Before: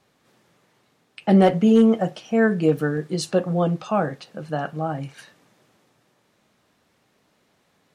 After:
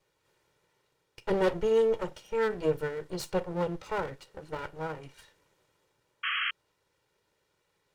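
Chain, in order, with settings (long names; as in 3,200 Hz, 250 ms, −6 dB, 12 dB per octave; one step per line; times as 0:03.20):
lower of the sound and its delayed copy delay 2.1 ms
sound drawn into the spectrogram noise, 0:06.23–0:06.51, 1,100–3,300 Hz −22 dBFS
level −8.5 dB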